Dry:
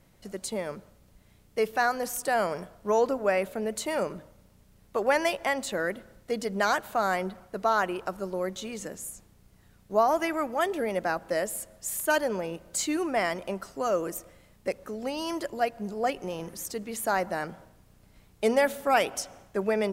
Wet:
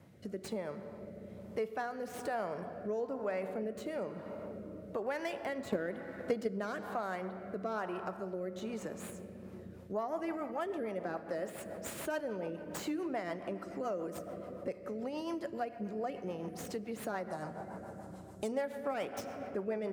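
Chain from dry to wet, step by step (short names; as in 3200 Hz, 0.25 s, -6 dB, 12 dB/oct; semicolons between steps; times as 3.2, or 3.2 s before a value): tracing distortion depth 0.1 ms; 17.3–18.52 ten-band EQ 500 Hz -6 dB, 1000 Hz +4 dB, 2000 Hz -10 dB, 8000 Hz +11 dB; reverb RT60 2.9 s, pre-delay 5 ms, DRR 10.5 dB; rotary speaker horn 1.1 Hz, later 7 Hz, at 9.24; HPF 79 Hz 24 dB/oct; high shelf 2500 Hz -10.5 dB; compressor 2.5:1, threshold -48 dBFS, peak gain reduction 18.5 dB; 5.66–6.48 transient shaper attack +8 dB, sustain +2 dB; gain +6.5 dB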